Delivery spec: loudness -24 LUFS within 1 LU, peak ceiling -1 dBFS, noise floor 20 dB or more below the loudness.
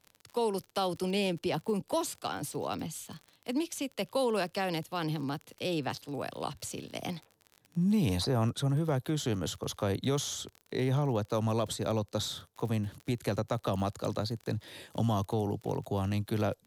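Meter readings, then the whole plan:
ticks 39/s; loudness -33.0 LUFS; peak -19.5 dBFS; loudness target -24.0 LUFS
-> de-click; gain +9 dB

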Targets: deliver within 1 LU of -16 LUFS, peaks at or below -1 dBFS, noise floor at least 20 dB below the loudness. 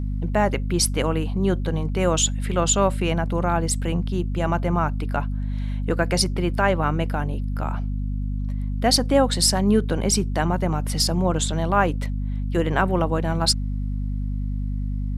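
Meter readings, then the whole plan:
hum 50 Hz; harmonics up to 250 Hz; hum level -23 dBFS; loudness -23.0 LUFS; peak -5.0 dBFS; loudness target -16.0 LUFS
-> notches 50/100/150/200/250 Hz; gain +7 dB; limiter -1 dBFS

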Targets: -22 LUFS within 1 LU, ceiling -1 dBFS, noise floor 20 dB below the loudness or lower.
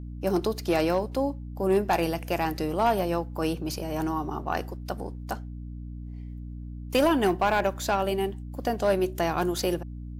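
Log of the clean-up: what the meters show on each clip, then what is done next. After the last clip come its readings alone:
clipped 0.5%; flat tops at -15.5 dBFS; hum 60 Hz; harmonics up to 300 Hz; hum level -35 dBFS; loudness -27.5 LUFS; peak -15.5 dBFS; loudness target -22.0 LUFS
-> clip repair -15.5 dBFS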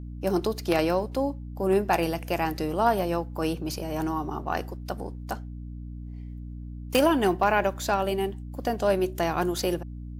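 clipped 0.0%; hum 60 Hz; harmonics up to 300 Hz; hum level -35 dBFS
-> notches 60/120/180/240/300 Hz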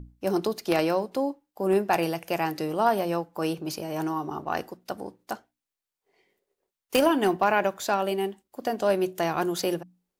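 hum none; loudness -27.0 LUFS; peak -6.5 dBFS; loudness target -22.0 LUFS
-> gain +5 dB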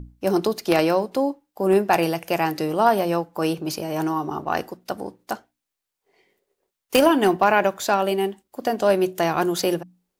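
loudness -22.0 LUFS; peak -1.5 dBFS; noise floor -84 dBFS

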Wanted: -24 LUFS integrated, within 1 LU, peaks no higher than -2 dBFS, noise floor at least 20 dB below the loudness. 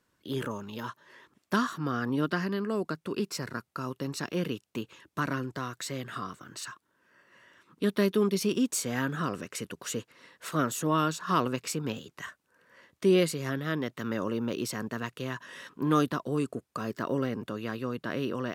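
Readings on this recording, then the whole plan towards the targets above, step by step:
loudness -31.5 LUFS; peak -12.0 dBFS; loudness target -24.0 LUFS
-> gain +7.5 dB

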